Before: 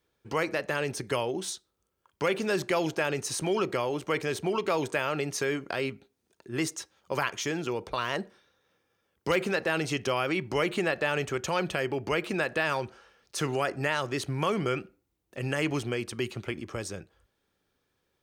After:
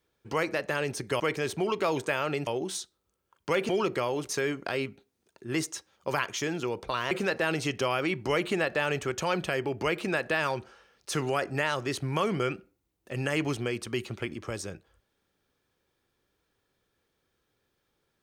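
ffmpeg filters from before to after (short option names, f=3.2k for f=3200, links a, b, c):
-filter_complex "[0:a]asplit=6[a][b][c][d][e][f];[a]atrim=end=1.202[g];[b]atrim=start=4.058:end=5.332[h];[c]atrim=start=1.198:end=2.422[i];[d]atrim=start=3.458:end=4.062[j];[e]atrim=start=5.328:end=8.152[k];[f]atrim=start=9.368[l];[g][h]acrossfade=d=0.004:c1=hsin:c2=hsin[m];[m][i]acrossfade=d=0.004:c1=hsin:c2=hsin[n];[n][j]acrossfade=d=0.004:c1=hsin:c2=hsin[o];[o][k]acrossfade=d=0.004:c1=hsin:c2=hsin[p];[p][l]acrossfade=d=0.004:c1=hsin:c2=hsin"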